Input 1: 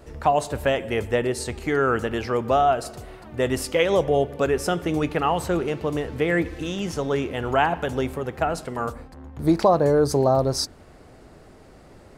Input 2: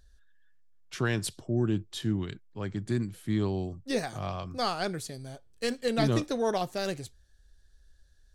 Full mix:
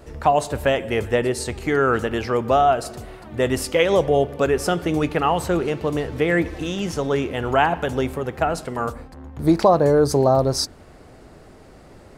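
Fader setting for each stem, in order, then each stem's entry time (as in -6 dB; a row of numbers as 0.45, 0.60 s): +2.5, -17.0 dB; 0.00, 0.00 s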